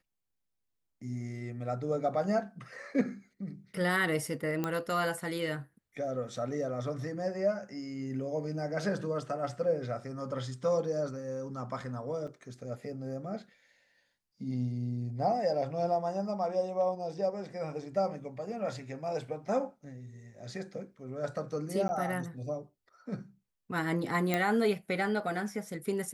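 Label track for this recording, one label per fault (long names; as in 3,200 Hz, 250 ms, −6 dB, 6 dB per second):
4.640000	4.640000	click −18 dBFS
12.270000	12.280000	drop-out 5.4 ms
21.880000	21.890000	drop-out 10 ms
24.340000	24.340000	click −14 dBFS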